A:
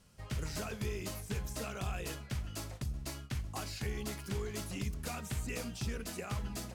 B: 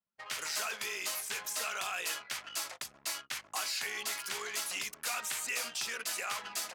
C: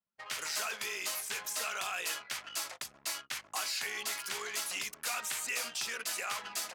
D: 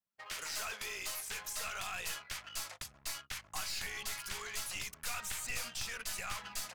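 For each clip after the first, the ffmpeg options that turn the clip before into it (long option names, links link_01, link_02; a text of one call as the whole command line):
ffmpeg -i in.wav -filter_complex "[0:a]anlmdn=0.00158,highpass=1100,asplit=2[link_01][link_02];[link_02]alimiter=level_in=17dB:limit=-24dB:level=0:latency=1:release=24,volume=-17dB,volume=2dB[link_03];[link_01][link_03]amix=inputs=2:normalize=0,volume=5dB" out.wav
ffmpeg -i in.wav -af anull out.wav
ffmpeg -i in.wav -af "aeval=exprs='clip(val(0),-1,0.0178)':channel_layout=same,acrusher=bits=9:mode=log:mix=0:aa=0.000001,asubboost=boost=7:cutoff=130,volume=-3dB" out.wav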